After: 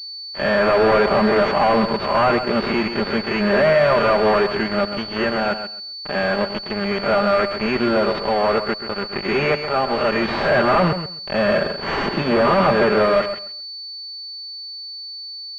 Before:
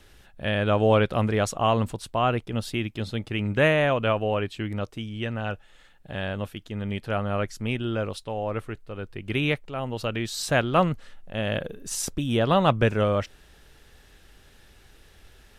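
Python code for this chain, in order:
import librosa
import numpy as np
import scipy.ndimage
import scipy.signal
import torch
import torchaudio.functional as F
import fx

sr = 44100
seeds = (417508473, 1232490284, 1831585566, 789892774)

p1 = fx.spec_swells(x, sr, rise_s=0.44)
p2 = fx.highpass(p1, sr, hz=480.0, slope=6)
p3 = p2 + 0.84 * np.pad(p2, (int(5.0 * sr / 1000.0), 0))[:len(p2)]
p4 = fx.fuzz(p3, sr, gain_db=32.0, gate_db=-36.0)
p5 = p4 + fx.echo_feedback(p4, sr, ms=132, feedback_pct=18, wet_db=-9.5, dry=0)
y = fx.pwm(p5, sr, carrier_hz=4500.0)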